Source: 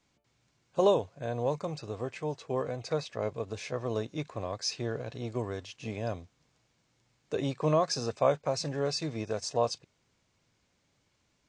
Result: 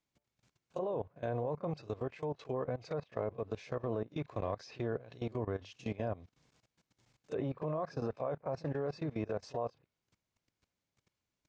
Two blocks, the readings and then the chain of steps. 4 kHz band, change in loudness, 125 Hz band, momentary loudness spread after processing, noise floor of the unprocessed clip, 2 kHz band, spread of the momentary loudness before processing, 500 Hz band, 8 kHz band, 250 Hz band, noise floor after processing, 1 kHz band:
−17.5 dB, −6.5 dB, −4.5 dB, 4 LU, −74 dBFS, −7.0 dB, 10 LU, −6.5 dB, below −20 dB, −4.0 dB, below −85 dBFS, −7.5 dB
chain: backwards echo 31 ms −12.5 dB
treble cut that deepens with the level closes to 1,500 Hz, closed at −28.5 dBFS
output level in coarse steps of 18 dB
level +1 dB

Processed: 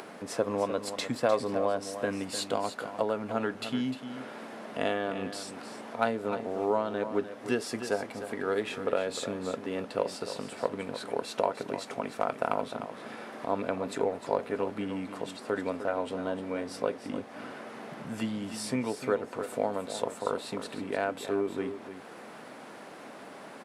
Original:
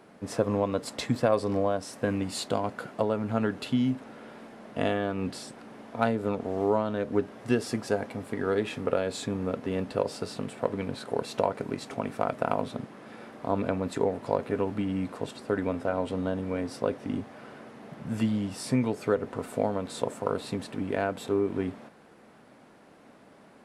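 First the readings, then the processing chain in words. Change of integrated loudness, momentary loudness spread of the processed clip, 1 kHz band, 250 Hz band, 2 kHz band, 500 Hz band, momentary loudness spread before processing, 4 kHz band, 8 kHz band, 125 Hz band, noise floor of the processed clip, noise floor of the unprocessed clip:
−3.0 dB, 12 LU, −0.5 dB, −5.0 dB, +0.5 dB, −1.5 dB, 10 LU, +0.5 dB, +0.5 dB, −9.5 dB, −47 dBFS, −55 dBFS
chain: high-pass filter 390 Hz 6 dB per octave
upward compression, threshold −35 dBFS
single-tap delay 303 ms −10.5 dB

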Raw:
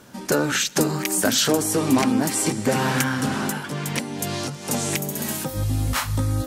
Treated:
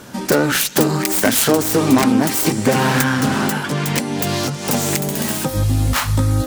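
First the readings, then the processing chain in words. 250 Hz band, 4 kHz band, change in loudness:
+6.0 dB, +3.5 dB, +5.5 dB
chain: phase distortion by the signal itself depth 0.13 ms
in parallel at +0.5 dB: downward compressor, threshold −28 dBFS, peak gain reduction 13.5 dB
on the sum: level +3.5 dB

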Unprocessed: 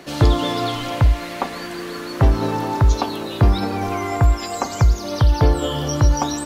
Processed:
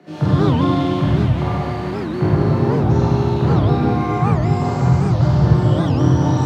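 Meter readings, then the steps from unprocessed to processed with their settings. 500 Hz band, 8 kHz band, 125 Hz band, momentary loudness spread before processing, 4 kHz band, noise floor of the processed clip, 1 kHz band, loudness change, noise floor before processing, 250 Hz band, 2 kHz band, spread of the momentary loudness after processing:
+3.5 dB, below −10 dB, +5.0 dB, 10 LU, −6.0 dB, −24 dBFS, +1.0 dB, +3.0 dB, −31 dBFS, +7.0 dB, −1.5 dB, 5 LU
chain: high-pass filter 110 Hz 24 dB per octave
RIAA equalisation playback
frequency shifter +15 Hz
in parallel at −12 dB: hard clipping −11 dBFS, distortion −5 dB
on the sum: chorus effect 0.46 Hz, delay 19.5 ms, depth 7.8 ms
four-comb reverb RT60 3.1 s, combs from 32 ms, DRR −9.5 dB
wow of a warped record 78 rpm, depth 250 cents
level −8.5 dB

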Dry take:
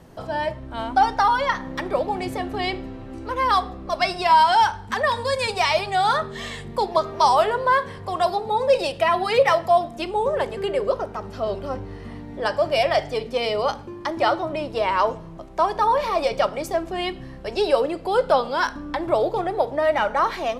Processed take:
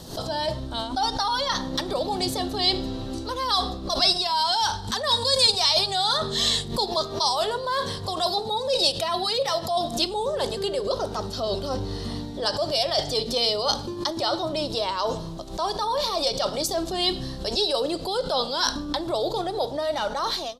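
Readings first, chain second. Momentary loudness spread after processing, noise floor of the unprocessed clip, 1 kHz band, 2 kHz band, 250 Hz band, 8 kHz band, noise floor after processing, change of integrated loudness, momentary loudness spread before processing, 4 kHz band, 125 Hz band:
8 LU, −38 dBFS, −7.0 dB, −8.5 dB, 0.0 dB, +9.0 dB, −34 dBFS, −2.0 dB, 11 LU, +8.5 dB, +1.0 dB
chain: fade-out on the ending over 0.59 s
reversed playback
downward compressor 4 to 1, threshold −30 dBFS, peak gain reduction 15.5 dB
reversed playback
high shelf with overshoot 3,000 Hz +9.5 dB, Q 3
background raised ahead of every attack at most 110 dB per second
level +5 dB

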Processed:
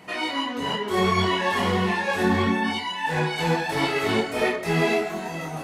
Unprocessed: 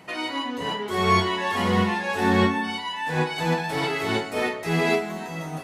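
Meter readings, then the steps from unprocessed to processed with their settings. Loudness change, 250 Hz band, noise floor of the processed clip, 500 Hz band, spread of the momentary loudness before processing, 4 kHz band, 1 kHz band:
+0.5 dB, 0.0 dB, −33 dBFS, +1.0 dB, 8 LU, +1.5 dB, 0.0 dB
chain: brickwall limiter −15 dBFS, peak gain reduction 7.5 dB
multi-voice chorus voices 4, 1.4 Hz, delay 24 ms, depth 3 ms
level +5 dB

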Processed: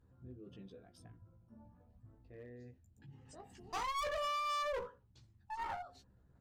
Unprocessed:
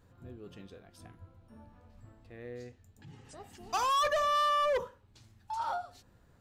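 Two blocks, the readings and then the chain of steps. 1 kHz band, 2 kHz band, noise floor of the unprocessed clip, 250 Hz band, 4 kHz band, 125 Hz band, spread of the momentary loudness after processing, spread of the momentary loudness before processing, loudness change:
−9.0 dB, −7.0 dB, −63 dBFS, −4.5 dB, −8.0 dB, −4.0 dB, 22 LU, 22 LU, −9.5 dB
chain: spectral envelope exaggerated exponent 1.5
chorus effect 0.35 Hz, delay 15 ms, depth 2.2 ms
asymmetric clip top −43.5 dBFS, bottom −30 dBFS
level −1 dB

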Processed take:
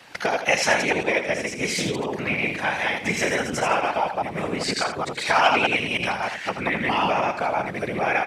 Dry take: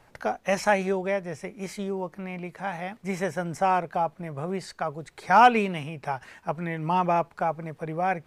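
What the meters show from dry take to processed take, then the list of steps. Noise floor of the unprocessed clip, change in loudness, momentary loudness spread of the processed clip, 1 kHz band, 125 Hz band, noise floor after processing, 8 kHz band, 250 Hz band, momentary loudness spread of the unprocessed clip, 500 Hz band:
−59 dBFS, +4.0 dB, 7 LU, +0.5 dB, 0.0 dB, −35 dBFS, +12.0 dB, +2.0 dB, 13 LU, +3.0 dB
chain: delay that plays each chunk backwards 103 ms, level −0.5 dB
downward compressor 2.5 to 1, threshold −31 dBFS, peak gain reduction 15 dB
random phases in short frames
meter weighting curve D
single-tap delay 81 ms −9 dB
level +7 dB

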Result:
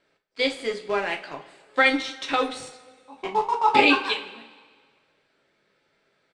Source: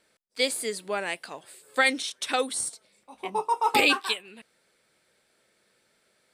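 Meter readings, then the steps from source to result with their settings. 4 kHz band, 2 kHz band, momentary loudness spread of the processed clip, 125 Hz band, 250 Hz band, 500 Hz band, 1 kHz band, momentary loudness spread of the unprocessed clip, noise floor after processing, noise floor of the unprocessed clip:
+0.5 dB, +3.0 dB, 21 LU, can't be measured, +6.5 dB, +4.0 dB, +4.5 dB, 16 LU, −70 dBFS, −69 dBFS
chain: high-shelf EQ 10,000 Hz −11 dB
in parallel at −9 dB: bit reduction 5 bits
on the sum: high-frequency loss of the air 120 metres
single-tap delay 160 ms −24 dB
coupled-rooms reverb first 0.28 s, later 1.7 s, from −19 dB, DRR 1.5 dB

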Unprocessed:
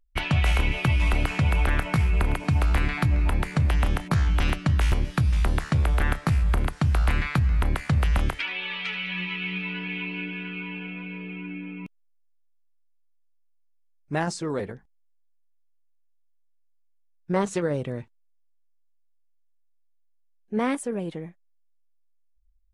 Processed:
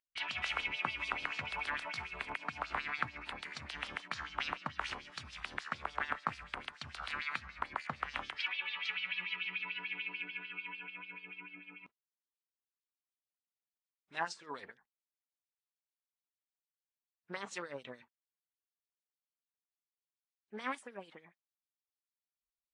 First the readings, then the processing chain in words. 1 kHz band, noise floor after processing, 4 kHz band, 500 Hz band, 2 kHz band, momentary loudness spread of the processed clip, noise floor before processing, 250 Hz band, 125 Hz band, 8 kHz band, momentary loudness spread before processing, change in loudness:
−8.0 dB, below −85 dBFS, −6.5 dB, −18.0 dB, −7.0 dB, 12 LU, −63 dBFS, −23.5 dB, −32.5 dB, −14.0 dB, 12 LU, −14.0 dB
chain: dynamic equaliser 240 Hz, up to +6 dB, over −47 dBFS, Q 6.2
auto-filter band-pass sine 6.8 Hz 980–4,800 Hz
level −1 dB
AAC 48 kbit/s 22,050 Hz

